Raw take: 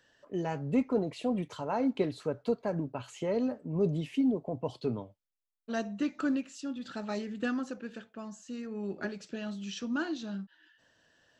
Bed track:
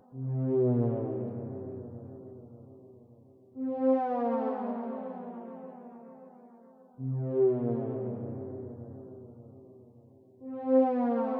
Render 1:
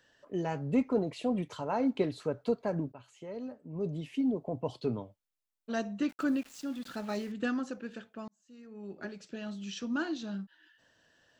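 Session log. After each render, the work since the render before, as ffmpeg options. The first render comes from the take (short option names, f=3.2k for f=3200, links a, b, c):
-filter_complex "[0:a]asettb=1/sr,asplit=3[a][b][c];[a]atrim=end=6.094[d];[b]atrim=start=6.09:end=7.32,asetpts=PTS-STARTPTS,afade=t=in:d=0.004:c=qsin,afade=t=out:st=1.226:d=0.004:c=qsin,aeval=exprs='val(0)*gte(abs(val(0)),0.00376)':c=same[e];[c]atrim=start=7.316[f];[d][e]acrossfade=d=0.004:c1=hsin:c2=qsin[g];[g][f]acrossfade=d=0.004:c1=qsin:c2=hsin,asplit=3[h][i][j];[h]atrim=end=2.92,asetpts=PTS-STARTPTS,afade=t=out:st=2.916:d=0.004:c=hsin:silence=0.237137[k];[i]atrim=start=2.92:end=8.28,asetpts=PTS-STARTPTS,afade=t=in:d=1.59:c=qua:silence=0.237137,afade=t=out:st=5.356:d=0.004:c=hsin[l];[j]atrim=start=8.28,asetpts=PTS-STARTPTS,afade=t=in:d=2.03:c=qsin[m];[k][l][m]concat=n=3:v=0:a=1"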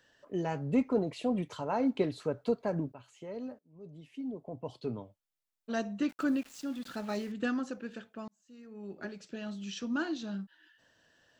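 -filter_complex "[0:a]asplit=2[a][b];[a]atrim=end=3.59,asetpts=PTS-STARTPTS,afade=t=out:st=3.586:d=0.004:c=hsin:silence=0.0630957[c];[b]atrim=start=3.59,asetpts=PTS-STARTPTS,afade=t=in:d=2.13:silence=0.0630957[d];[c][d]concat=n=2:v=0:a=1"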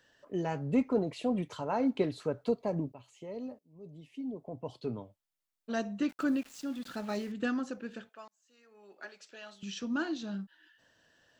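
-filter_complex "[0:a]asettb=1/sr,asplit=3[a][b][c];[a]atrim=end=2.504[d];[b]atrim=start=2.5:end=4.36,asetpts=PTS-STARTPTS,afade=t=in:d=0.004:c=qsin,afade=t=out:st=1.856:d=0.004:c=qsin,equalizer=f=1.5k:w=4.6:g=-15[e];[c]atrim=start=4.356[f];[d][e]acrossfade=d=0.004:c1=hsin:c2=qsin[g];[g][f]acrossfade=d=0.004:c1=qsin:c2=hsin,asettb=1/sr,asplit=3[h][i][j];[h]atrim=end=8.094[k];[i]atrim=start=8.09:end=9.63,asetpts=PTS-STARTPTS,afade=t=in:d=0.004:c=qsin,afade=t=out:st=1.536:d=0.004:c=qsin,highpass=710[l];[j]atrim=start=9.626[m];[k][l]acrossfade=d=0.004:c1=hsin:c2=qsin[n];[n][m]acrossfade=d=0.004:c1=qsin:c2=hsin"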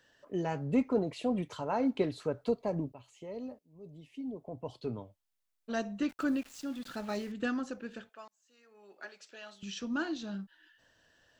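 -af "asubboost=boost=2:cutoff=93"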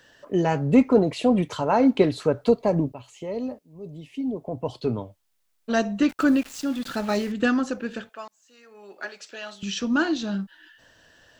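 -af "volume=11.5dB"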